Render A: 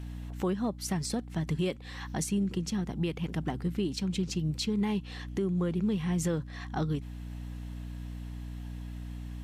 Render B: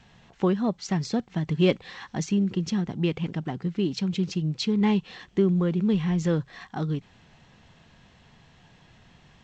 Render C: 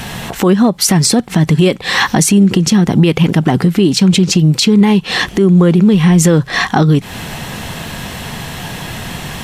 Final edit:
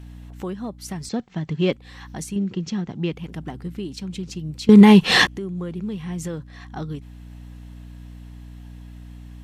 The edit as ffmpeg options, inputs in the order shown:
-filter_complex "[1:a]asplit=2[a][b];[0:a]asplit=4[c][d][e][f];[c]atrim=end=1.092[g];[a]atrim=start=1.088:end=1.732[h];[d]atrim=start=1.728:end=2.362[i];[b]atrim=start=2.358:end=3.132[j];[e]atrim=start=3.128:end=4.692[k];[2:a]atrim=start=4.688:end=5.272[l];[f]atrim=start=5.268[m];[g][h]acrossfade=d=0.004:c1=hsin:c2=hsin[n];[n][i]acrossfade=d=0.004:c1=hsin:c2=hsin[o];[o][j]acrossfade=d=0.004:c1=hsin:c2=hsin[p];[p][k]acrossfade=d=0.004:c1=hsin:c2=hsin[q];[q][l]acrossfade=d=0.004:c1=hsin:c2=hsin[r];[r][m]acrossfade=d=0.004:c1=hsin:c2=hsin"

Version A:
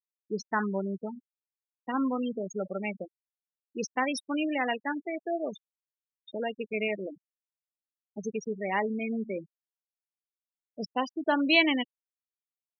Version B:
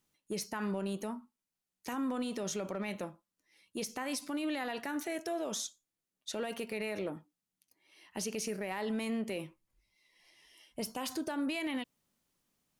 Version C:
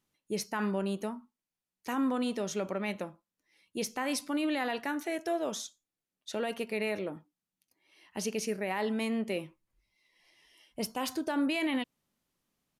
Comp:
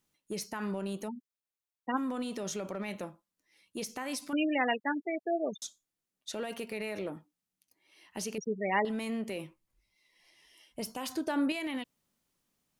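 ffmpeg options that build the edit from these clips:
-filter_complex "[0:a]asplit=3[a][b][c];[1:a]asplit=5[d][e][f][g][h];[d]atrim=end=1.09[i];[a]atrim=start=1.07:end=1.98[j];[e]atrim=start=1.96:end=4.332[k];[b]atrim=start=4.328:end=5.622[l];[f]atrim=start=5.618:end=8.382[m];[c]atrim=start=8.378:end=8.852[n];[g]atrim=start=8.848:end=11.122[o];[2:a]atrim=start=11.118:end=11.522[p];[h]atrim=start=11.518[q];[i][j]acrossfade=d=0.02:c1=tri:c2=tri[r];[r][k]acrossfade=d=0.02:c1=tri:c2=tri[s];[s][l]acrossfade=d=0.004:c1=hsin:c2=hsin[t];[t][m]acrossfade=d=0.004:c1=hsin:c2=hsin[u];[u][n]acrossfade=d=0.004:c1=hsin:c2=hsin[v];[v][o]acrossfade=d=0.004:c1=hsin:c2=hsin[w];[w][p]acrossfade=d=0.004:c1=hsin:c2=hsin[x];[x][q]acrossfade=d=0.004:c1=hsin:c2=hsin"

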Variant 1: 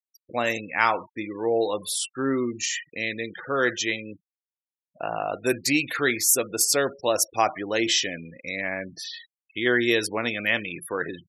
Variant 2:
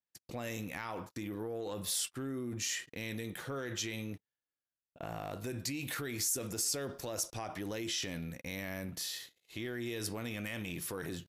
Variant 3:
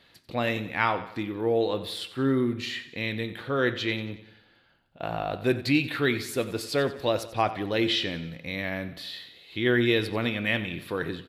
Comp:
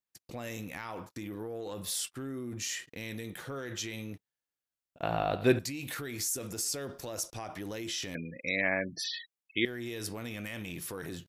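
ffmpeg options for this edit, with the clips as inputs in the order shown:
-filter_complex "[1:a]asplit=3[a][b][c];[a]atrim=end=5.032[d];[2:a]atrim=start=5.028:end=5.592[e];[b]atrim=start=5.588:end=8.152[f];[0:a]atrim=start=8.148:end=9.652[g];[c]atrim=start=9.648[h];[d][e]acrossfade=d=0.004:c1=hsin:c2=hsin[i];[i][f]acrossfade=d=0.004:c1=hsin:c2=hsin[j];[j][g]acrossfade=d=0.004:c1=hsin:c2=hsin[k];[k][h]acrossfade=d=0.004:c1=hsin:c2=hsin"

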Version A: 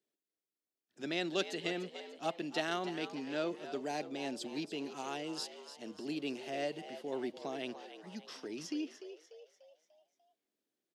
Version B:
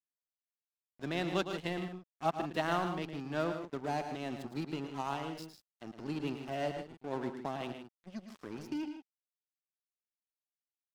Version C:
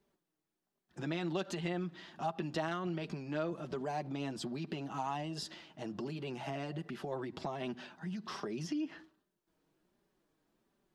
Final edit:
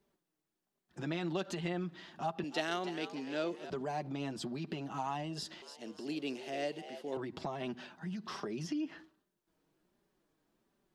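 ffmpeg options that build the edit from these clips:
-filter_complex "[0:a]asplit=2[a][b];[2:a]asplit=3[c][d][e];[c]atrim=end=2.442[f];[a]atrim=start=2.438:end=3.702[g];[d]atrim=start=3.698:end=5.622[h];[b]atrim=start=5.618:end=7.172[i];[e]atrim=start=7.168[j];[f][g]acrossfade=d=0.004:c1=hsin:c2=hsin[k];[k][h]acrossfade=d=0.004:c1=hsin:c2=hsin[l];[l][i]acrossfade=d=0.004:c1=hsin:c2=hsin[m];[m][j]acrossfade=d=0.004:c1=hsin:c2=hsin"

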